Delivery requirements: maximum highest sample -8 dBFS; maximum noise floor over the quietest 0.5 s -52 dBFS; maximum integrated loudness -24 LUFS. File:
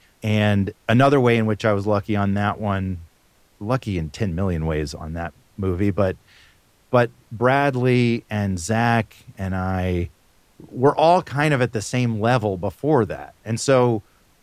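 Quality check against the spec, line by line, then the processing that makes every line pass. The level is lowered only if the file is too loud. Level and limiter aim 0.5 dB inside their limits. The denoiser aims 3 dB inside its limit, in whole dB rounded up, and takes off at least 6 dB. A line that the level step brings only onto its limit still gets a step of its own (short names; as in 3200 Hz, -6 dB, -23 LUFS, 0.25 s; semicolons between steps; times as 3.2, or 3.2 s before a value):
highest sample -4.5 dBFS: fail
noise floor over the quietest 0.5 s -58 dBFS: OK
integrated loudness -21.0 LUFS: fail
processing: gain -3.5 dB; limiter -8.5 dBFS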